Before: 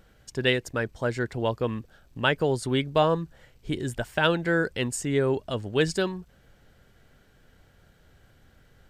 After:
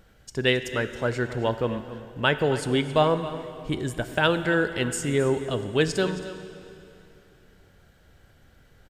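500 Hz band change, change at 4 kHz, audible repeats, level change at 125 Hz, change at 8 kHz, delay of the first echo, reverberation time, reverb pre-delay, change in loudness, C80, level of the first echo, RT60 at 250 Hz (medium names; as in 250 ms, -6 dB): +1.5 dB, +1.5 dB, 1, +1.0 dB, +1.5 dB, 271 ms, 2.9 s, 6 ms, +1.5 dB, 10.0 dB, -14.5 dB, 2.8 s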